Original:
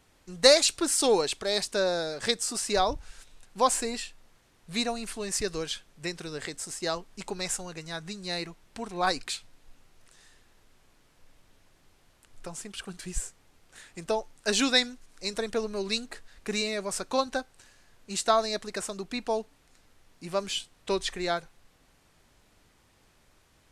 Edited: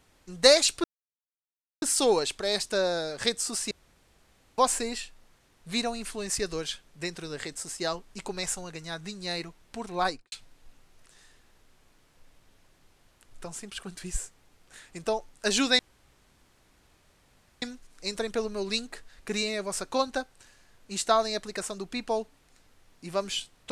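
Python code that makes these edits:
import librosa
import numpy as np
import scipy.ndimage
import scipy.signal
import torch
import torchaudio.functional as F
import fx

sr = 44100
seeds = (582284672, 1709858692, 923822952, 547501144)

y = fx.studio_fade_out(x, sr, start_s=9.02, length_s=0.32)
y = fx.edit(y, sr, fx.insert_silence(at_s=0.84, length_s=0.98),
    fx.room_tone_fill(start_s=2.73, length_s=0.87),
    fx.insert_room_tone(at_s=14.81, length_s=1.83), tone=tone)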